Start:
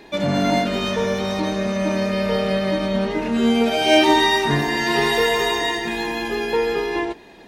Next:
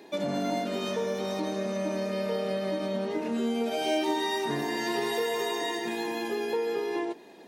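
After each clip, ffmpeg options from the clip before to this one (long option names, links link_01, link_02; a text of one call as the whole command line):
ffmpeg -i in.wav -af "highpass=270,equalizer=frequency=2100:width=0.39:gain=-8.5,acompressor=threshold=-27dB:ratio=2.5,volume=-1dB" out.wav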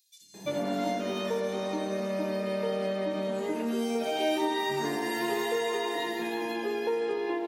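ffmpeg -i in.wav -filter_complex "[0:a]acrossover=split=160|4900[link_01][link_02][link_03];[link_01]adelay=210[link_04];[link_02]adelay=340[link_05];[link_04][link_05][link_03]amix=inputs=3:normalize=0" out.wav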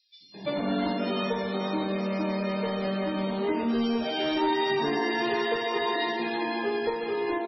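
ffmpeg -i in.wav -filter_complex "[0:a]asplit=2[link_01][link_02];[link_02]aeval=exprs='0.0501*(abs(mod(val(0)/0.0501+3,4)-2)-1)':channel_layout=same,volume=-6dB[link_03];[link_01][link_03]amix=inputs=2:normalize=0,asplit=2[link_04][link_05];[link_05]adelay=25,volume=-5dB[link_06];[link_04][link_06]amix=inputs=2:normalize=0" -ar 24000 -c:a libmp3lame -b:a 16k out.mp3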